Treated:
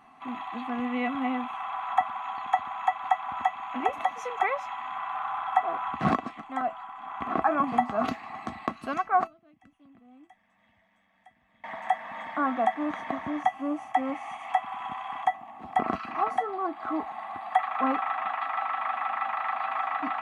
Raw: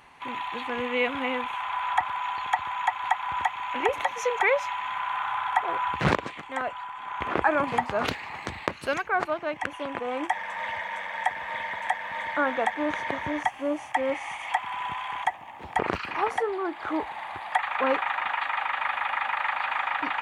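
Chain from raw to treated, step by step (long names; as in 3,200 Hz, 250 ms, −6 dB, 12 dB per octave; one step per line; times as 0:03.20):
0:09.27–0:11.64: guitar amp tone stack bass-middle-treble 10-0-1
tuned comb filter 660 Hz, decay 0.18 s, harmonics all, mix 80%
hollow resonant body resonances 240/750/1,100 Hz, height 18 dB, ringing for 35 ms
level +1 dB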